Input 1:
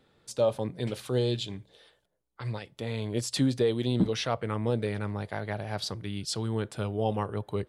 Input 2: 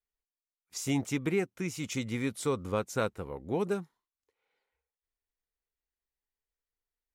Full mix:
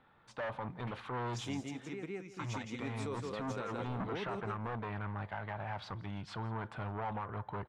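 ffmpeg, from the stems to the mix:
-filter_complex "[0:a]asoftclip=type=tanh:threshold=-32dB,firequalizer=gain_entry='entry(240,0);entry(420,-5);entry(900,11);entry(4900,-12)':delay=0.05:min_phase=1,volume=-3.5dB,asplit=3[a][b][c];[b]volume=-22.5dB[d];[1:a]highpass=130,adelay=600,volume=-7.5dB,asplit=2[e][f];[f]volume=-6dB[g];[c]apad=whole_len=341369[h];[e][h]sidechaingate=range=-9dB:threshold=-56dB:ratio=16:detection=peak[i];[d][g]amix=inputs=2:normalize=0,aecho=0:1:167|334|501:1|0.18|0.0324[j];[a][i][j]amix=inputs=3:normalize=0,lowpass=5.7k,alimiter=level_in=5.5dB:limit=-24dB:level=0:latency=1:release=90,volume=-5.5dB"

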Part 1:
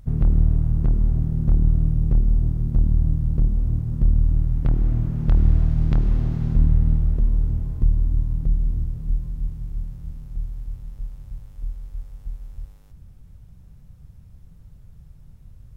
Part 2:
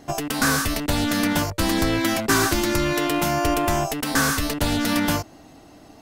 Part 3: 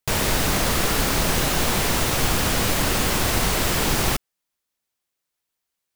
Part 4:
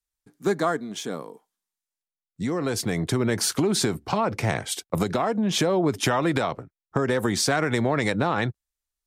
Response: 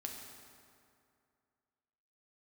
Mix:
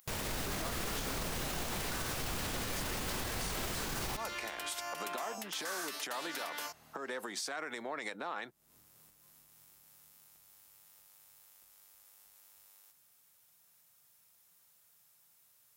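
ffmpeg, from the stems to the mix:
-filter_complex "[0:a]acompressor=threshold=-24dB:ratio=2,aemphasis=mode=production:type=75kf,volume=-5dB[a];[1:a]adelay=1500,volume=-11dB[b];[2:a]volume=-10.5dB,asplit=2[c][d];[d]volume=-15.5dB[e];[3:a]equalizer=f=240:w=0.61:g=13,acompressor=threshold=-23dB:ratio=2.5,volume=-2.5dB,asplit=2[f][g];[g]apad=whole_len=695351[h];[a][h]sidechaincompress=threshold=-38dB:ratio=8:attack=16:release=235[i];[i][b][f]amix=inputs=3:normalize=0,highpass=950,acompressor=threshold=-34dB:ratio=6,volume=0dB[j];[4:a]atrim=start_sample=2205[k];[e][k]afir=irnorm=-1:irlink=0[l];[c][j][l]amix=inputs=3:normalize=0,alimiter=level_in=4dB:limit=-24dB:level=0:latency=1:release=70,volume=-4dB"

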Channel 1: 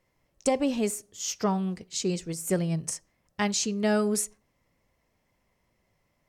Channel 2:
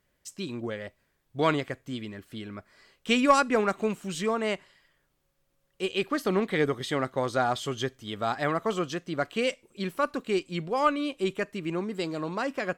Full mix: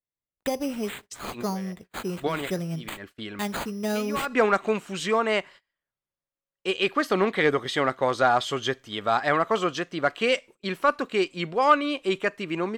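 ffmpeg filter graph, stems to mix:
-filter_complex "[0:a]acrusher=samples=8:mix=1:aa=0.000001,volume=-3dB,asplit=2[a][b];[1:a]asplit=2[c][d];[d]highpass=f=720:p=1,volume=10dB,asoftclip=type=tanh:threshold=-6.5dB[e];[c][e]amix=inputs=2:normalize=0,lowpass=f=3.2k:p=1,volume=-6dB,adelay=850,volume=2.5dB[f];[b]apad=whole_len=601076[g];[f][g]sidechaincompress=threshold=-44dB:ratio=8:attack=8:release=103[h];[a][h]amix=inputs=2:normalize=0,agate=range=-25dB:threshold=-45dB:ratio=16:detection=peak"

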